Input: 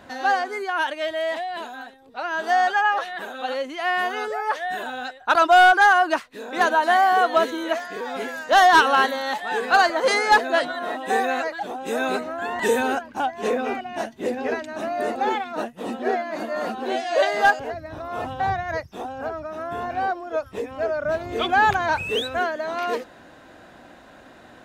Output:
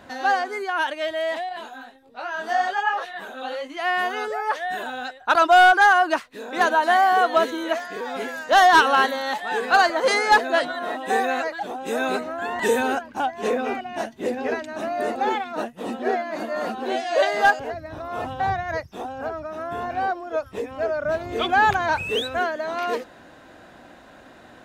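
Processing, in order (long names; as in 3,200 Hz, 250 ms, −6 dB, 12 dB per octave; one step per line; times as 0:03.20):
0:01.49–0:03.77: multi-voice chorus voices 2, 1.3 Hz, delay 20 ms, depth 3 ms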